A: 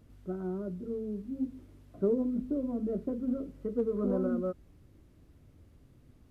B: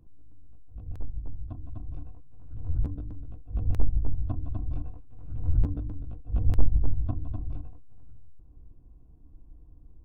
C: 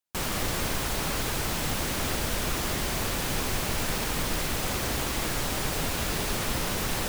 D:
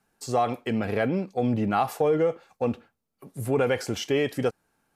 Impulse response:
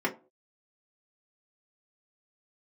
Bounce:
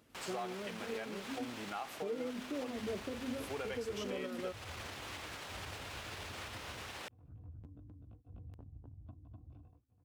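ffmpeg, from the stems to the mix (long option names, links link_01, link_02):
-filter_complex "[0:a]volume=3dB[link_01];[1:a]highpass=frequency=72:width=0.5412,highpass=frequency=72:width=1.3066,acompressor=threshold=-40dB:ratio=4,adelay=2000,volume=-10.5dB[link_02];[2:a]aemphasis=mode=reproduction:type=50fm,alimiter=level_in=3.5dB:limit=-24dB:level=0:latency=1:release=45,volume=-3.5dB,acrusher=bits=8:mix=0:aa=0.5,volume=-6.5dB[link_03];[3:a]volume=-10dB[link_04];[link_01][link_03][link_04]amix=inputs=3:normalize=0,highpass=frequency=730:poles=1,alimiter=level_in=6.5dB:limit=-24dB:level=0:latency=1:release=322,volume=-6.5dB,volume=0dB[link_05];[link_02][link_05]amix=inputs=2:normalize=0,equalizer=frequency=2900:width=1.5:gain=2.5"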